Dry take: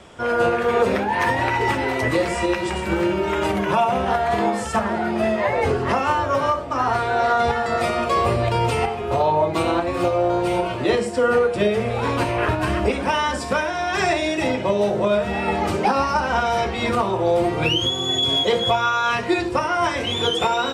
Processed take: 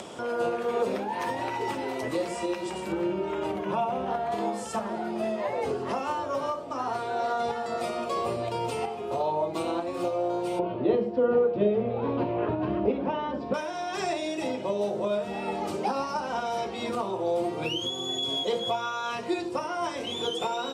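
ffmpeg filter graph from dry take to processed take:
-filter_complex "[0:a]asettb=1/sr,asplit=3[s0][s1][s2];[s0]atrim=end=2.924[s3];[s1]atrim=start=2.92:end=4.32,asetpts=PTS-STARTPTS,afade=t=in:d=0.004:c=qsin,afade=t=out:st=1.396:d=0.004:c=qsin,bass=f=250:g=5,treble=f=4000:g=-9,bandreject=f=50:t=h:w=6,bandreject=f=100:t=h:w=6,bandreject=f=150:t=h:w=6,bandreject=f=200:t=h:w=6,bandreject=f=250:t=h:w=6,bandreject=f=300:t=h:w=6[s4];[s2]atrim=start=4.316[s5];[s3][s4]acrossfade=d=0.004:c1=hsin:c2=qsin[s6];[s6][s5]acrossfade=d=0.004:c1=qsin:c2=hsin,asettb=1/sr,asplit=3[s7][s8][s9];[s7]atrim=end=10.594[s10];[s8]atrim=start=10.59:end=13.54,asetpts=PTS-STARTPTS,afade=t=in:d=0.004:c=qsin,afade=t=out:st=2.946:d=0.004:c=qsin,lowpass=f=3700:w=0.5412,lowpass=f=3700:w=1.3066,tiltshelf=f=910:g=7[s11];[s9]atrim=start=13.536[s12];[s10][s11]acrossfade=d=0.004:c1=hsin:c2=qsin[s13];[s13][s12]acrossfade=d=0.004:c1=qsin:c2=hsin,highpass=190,equalizer=f=1800:w=1.2:g=-8.5,acompressor=mode=upward:threshold=0.0794:ratio=2.5,volume=0.422"

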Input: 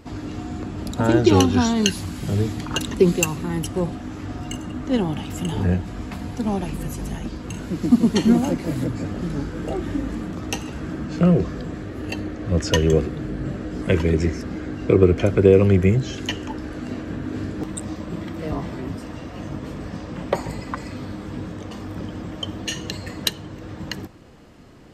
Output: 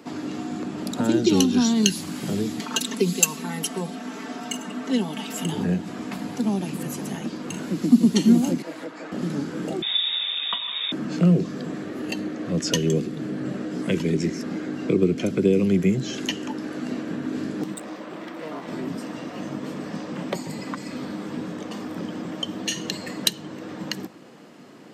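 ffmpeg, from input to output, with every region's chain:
-filter_complex "[0:a]asettb=1/sr,asplit=3[s0][s1][s2];[s0]atrim=end=2.604[s3];[s1]atrim=start=2.6:end=5.45,asetpts=PTS-STARTPTS,afade=t=in:d=0.004:c=qsin,afade=t=out:st=2.846:d=0.004:c=qsin,highpass=f=450:p=1,aecho=1:1:4.5:0.94,atrim=end_sample=125685[s4];[s2]atrim=start=5.446[s5];[s3][s4]acrossfade=d=0.004:c1=hsin:c2=qsin[s6];[s6][s5]acrossfade=d=0.004:c1=qsin:c2=hsin,asettb=1/sr,asplit=3[s7][s8][s9];[s7]atrim=end=8.624[s10];[s8]atrim=start=8.62:end=9.12,asetpts=PTS-STARTPTS,afade=t=in:d=0.004:c=qsin,afade=t=out:st=0.496:d=0.004:c=qsin,highpass=650,aemphasis=mode=reproduction:type=75fm,aecho=1:1:6.3:0.41,atrim=end_sample=22050[s11];[s9]atrim=start=9.116[s12];[s10][s11]acrossfade=d=0.004:c1=hsin:c2=qsin[s13];[s13][s12]acrossfade=d=0.004:c1=qsin:c2=hsin,asettb=1/sr,asplit=3[s14][s15][s16];[s14]atrim=end=9.824[s17];[s15]atrim=start=9.82:end=10.92,asetpts=PTS-STARTPTS,afade=t=in:d=0.004:c=qsin,afade=t=out:st=1.096:d=0.004:c=qsin,highshelf=f=2100:g=10.5,lowpass=f=3200:t=q:w=0.5098,lowpass=f=3200:t=q:w=0.6013,lowpass=f=3200:t=q:w=0.9,lowpass=f=3200:t=q:w=2.563,afreqshift=-3800[s18];[s16]atrim=start=10.916[s19];[s17][s18]acrossfade=d=0.004:c1=hsin:c2=qsin[s20];[s20][s19]acrossfade=d=0.004:c1=qsin:c2=hsin,asettb=1/sr,asplit=3[s21][s22][s23];[s21]atrim=end=17.744[s24];[s22]atrim=start=17.74:end=18.68,asetpts=PTS-STARTPTS,afade=t=in:d=0.004:c=qsin,afade=t=out:st=0.936:d=0.004:c=qsin,bass=f=250:g=-15,treble=f=4000:g=-7,aeval=exprs='val(0)+0.00501*(sin(2*PI*50*n/s)+sin(2*PI*2*50*n/s)/2+sin(2*PI*3*50*n/s)/3+sin(2*PI*4*50*n/s)/4+sin(2*PI*5*50*n/s)/5)':c=same,aeval=exprs='clip(val(0),-1,0.015)':c=same[s25];[s23]atrim=start=18.676[s26];[s24][s25]acrossfade=d=0.004:c1=hsin:c2=qsin[s27];[s27][s26]acrossfade=d=0.004:c1=qsin:c2=hsin,highpass=f=170:w=0.5412,highpass=f=170:w=1.3066,acrossover=split=300|3000[s28][s29][s30];[s29]acompressor=threshold=0.0158:ratio=3[s31];[s28][s31][s30]amix=inputs=3:normalize=0,volume=1.33"

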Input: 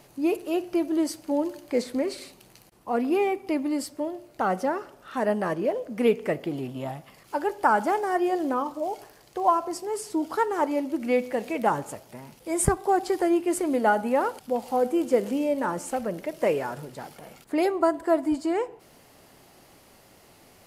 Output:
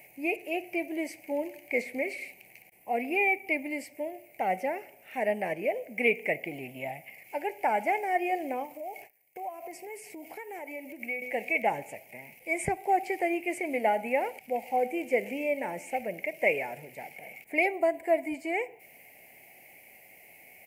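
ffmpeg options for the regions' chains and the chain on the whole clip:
-filter_complex "[0:a]asettb=1/sr,asplit=3[s0][s1][s2];[s0]atrim=end=8.654[s3];[s1]atrim=start=8.65:end=11.22,asetpts=PTS-STARTPTS,afade=t=in:d=0.004:c=qsin,afade=t=out:st=2.566:d=0.004:c=qsin,agate=range=0.1:threshold=0.00355:ratio=16:release=100:detection=peak,highshelf=f=11000:g=9,acompressor=threshold=0.0251:ratio=6:attack=3.2:release=140:knee=1:detection=peak[s4];[s2]atrim=start=11.216[s5];[s3][s4]acrossfade=d=0.004:c1=hsin:c2=qsin[s6];[s6][s5]acrossfade=d=0.004:c1=qsin:c2=hsin,aemphasis=mode=production:type=riaa,acrossover=split=6700[s7][s8];[s8]acompressor=threshold=0.00631:ratio=4:attack=1:release=60[s9];[s7][s9]amix=inputs=2:normalize=0,firequalizer=gain_entry='entry(160,0);entry(310,-5);entry(750,1);entry(1200,-27);entry(2200,12);entry(3500,-21);entry(14000,-8)':delay=0.05:min_phase=1"

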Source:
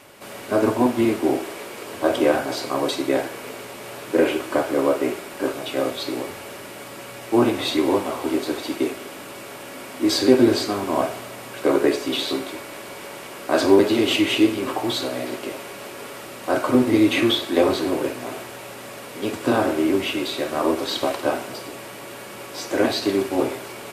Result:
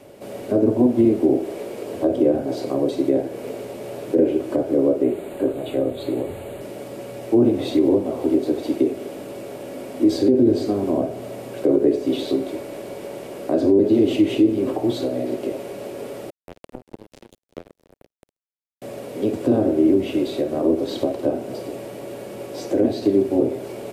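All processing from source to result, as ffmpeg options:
-filter_complex "[0:a]asettb=1/sr,asplit=3[s0][s1][s2];[s0]atrim=end=5.034[s3];[s1]atrim=start=5.03:end=6.61,asetpts=PTS-STARTPTS,afade=t=in:d=0.004:c=qsin,afade=t=out:st=1.576:d=0.004:c=qsin,asubboost=boost=5.5:cutoff=120,asuperstop=centerf=5500:order=4:qfactor=2[s4];[s2]atrim=start=6.606[s5];[s3][s4]acrossfade=d=0.004:c1=hsin:c2=qsin[s6];[s6][s5]acrossfade=d=0.004:c1=qsin:c2=hsin,asettb=1/sr,asplit=3[s7][s8][s9];[s7]atrim=end=16.304[s10];[s8]atrim=start=16.3:end=18.82,asetpts=PTS-STARTPTS,afade=t=in:d=0.004:c=qsin,afade=t=out:st=2.516:d=0.004:c=qsin,adynamicequalizer=threshold=0.0251:dfrequency=220:dqfactor=1.9:tfrequency=220:tqfactor=1.9:attack=5:release=100:ratio=0.375:range=3.5:mode=boostabove:tftype=bell,acompressor=threshold=0.0562:ratio=4:attack=3.2:release=140:knee=1:detection=peak,acrusher=bits=2:mix=0:aa=0.5[s11];[s9]atrim=start=18.816[s12];[s10][s11]acrossfade=d=0.004:c1=hsin:c2=qsin[s13];[s13][s12]acrossfade=d=0.004:c1=qsin:c2=hsin,lowshelf=f=800:t=q:w=1.5:g=10.5,acrossover=split=410[s14][s15];[s15]acompressor=threshold=0.0794:ratio=3[s16];[s14][s16]amix=inputs=2:normalize=0,alimiter=level_in=1.06:limit=0.891:release=50:level=0:latency=1,volume=0.473"

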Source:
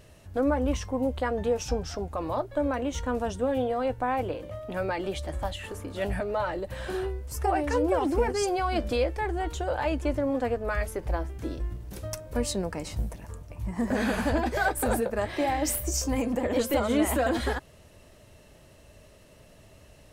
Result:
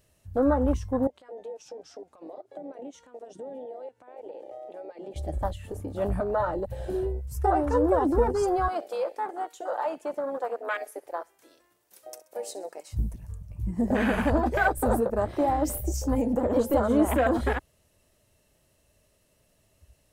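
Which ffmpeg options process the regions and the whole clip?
-filter_complex "[0:a]asettb=1/sr,asplit=3[s0][s1][s2];[s0]atrim=end=1.074[s3];[s1]atrim=start=1.07:end=5.16,asetpts=PTS-STARTPTS,afade=t=in:d=0.004:c=qsin,afade=t=out:st=4.086:d=0.004:c=qsin,highpass=280,lowpass=7800,acompressor=threshold=0.0126:ratio=6:attack=3.2:release=140:knee=1:detection=peak[s4];[s2]atrim=start=5.156[s5];[s3][s4]acrossfade=d=0.004:c1=hsin:c2=qsin[s6];[s6][s5]acrossfade=d=0.004:c1=qsin:c2=hsin,asettb=1/sr,asplit=3[s7][s8][s9];[s7]atrim=end=8.684[s10];[s8]atrim=start=8.68:end=12.93,asetpts=PTS-STARTPTS,afade=t=in:d=0.004:c=qsin,afade=t=out:st=4.246:d=0.004:c=qsin,highpass=620,aecho=1:1:65|130|195|260:0.15|0.0718|0.0345|0.0165,atrim=end_sample=187425[s11];[s9]atrim=start=12.926[s12];[s10][s11]acrossfade=d=0.004:c1=hsin:c2=qsin[s13];[s13][s12]acrossfade=d=0.004:c1=qsin:c2=hsin,afwtdn=0.0251,highshelf=f=6200:g=11.5,volume=1.33"

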